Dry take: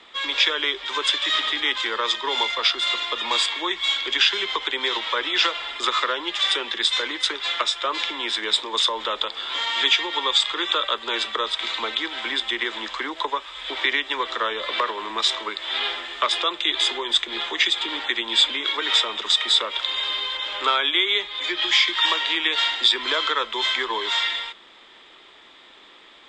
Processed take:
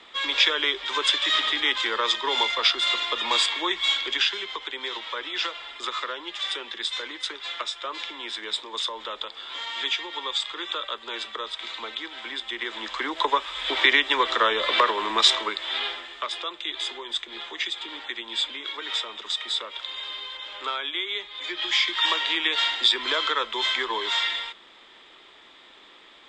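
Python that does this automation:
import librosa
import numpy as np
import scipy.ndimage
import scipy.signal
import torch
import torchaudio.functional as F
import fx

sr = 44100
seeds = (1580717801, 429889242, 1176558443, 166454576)

y = fx.gain(x, sr, db=fx.line((3.92, -0.5), (4.48, -8.0), (12.44, -8.0), (13.33, 3.5), (15.29, 3.5), (16.26, -9.0), (21.09, -9.0), (22.15, -2.0)))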